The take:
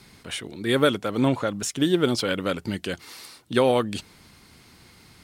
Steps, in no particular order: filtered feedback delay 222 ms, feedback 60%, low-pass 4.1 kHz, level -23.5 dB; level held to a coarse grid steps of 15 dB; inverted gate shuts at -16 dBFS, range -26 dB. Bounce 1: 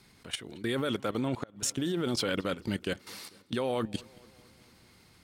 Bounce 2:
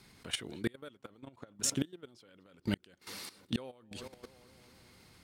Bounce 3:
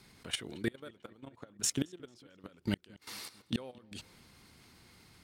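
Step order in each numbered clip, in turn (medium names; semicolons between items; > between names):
level held to a coarse grid > filtered feedback delay > inverted gate; filtered feedback delay > inverted gate > level held to a coarse grid; inverted gate > level held to a coarse grid > filtered feedback delay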